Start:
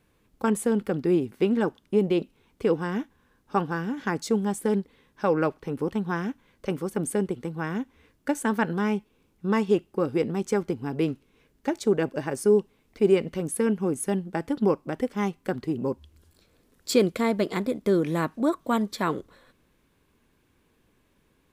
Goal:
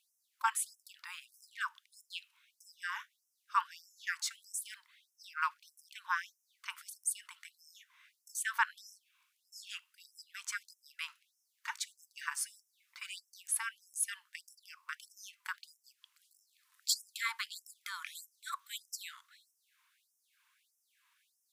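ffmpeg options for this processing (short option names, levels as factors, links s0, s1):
-filter_complex "[0:a]asettb=1/sr,asplit=3[s0][s1][s2];[s0]atrim=end=12.004[s3];[s1]atrim=start=12:end=13.11,asetpts=PTS-STARTPTS,afade=t=in:d=0.004:c=qsin,afade=t=out:st=1.106:d=0.004:c=qsin,aecho=1:1:5.9:0.47,atrim=end_sample=48951[s4];[s2]atrim=start=13.106[s5];[s3][s4]acrossfade=d=0.004:c1=hsin:c2=qsin[s6];[s6][s5]acrossfade=d=0.004:c1=qsin:c2=hsin,afftfilt=real='re*gte(b*sr/1024,860*pow(5300/860,0.5+0.5*sin(2*PI*1.6*pts/sr)))':imag='im*gte(b*sr/1024,860*pow(5300/860,0.5+0.5*sin(2*PI*1.6*pts/sr)))':win_size=1024:overlap=0.75"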